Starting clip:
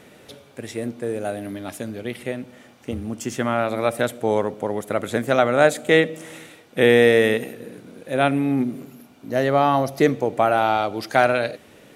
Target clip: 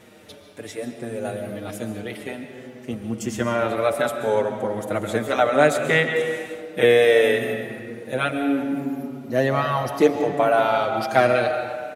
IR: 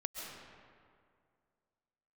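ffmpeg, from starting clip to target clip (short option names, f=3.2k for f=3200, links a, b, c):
-filter_complex "[0:a]asplit=2[a][b];[1:a]atrim=start_sample=2205[c];[b][c]afir=irnorm=-1:irlink=0,volume=1.5dB[d];[a][d]amix=inputs=2:normalize=0,asplit=2[e][f];[f]adelay=5.9,afreqshift=-0.62[g];[e][g]amix=inputs=2:normalize=1,volume=-3.5dB"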